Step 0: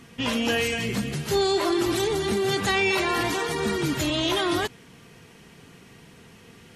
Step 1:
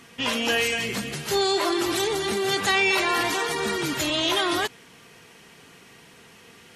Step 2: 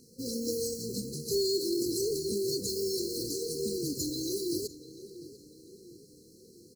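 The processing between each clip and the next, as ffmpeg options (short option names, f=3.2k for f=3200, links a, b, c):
-af "lowshelf=f=290:g=-12,volume=3dB"
-filter_complex "[0:a]acrusher=bits=3:mode=log:mix=0:aa=0.000001,asplit=2[a][b];[b]adelay=695,lowpass=f=4k:p=1,volume=-15dB,asplit=2[c][d];[d]adelay=695,lowpass=f=4k:p=1,volume=0.51,asplit=2[e][f];[f]adelay=695,lowpass=f=4k:p=1,volume=0.51,asplit=2[g][h];[h]adelay=695,lowpass=f=4k:p=1,volume=0.51,asplit=2[i][j];[j]adelay=695,lowpass=f=4k:p=1,volume=0.51[k];[a][c][e][g][i][k]amix=inputs=6:normalize=0,afftfilt=real='re*(1-between(b*sr/4096,530,4000))':imag='im*(1-between(b*sr/4096,530,4000))':win_size=4096:overlap=0.75,volume=-5dB"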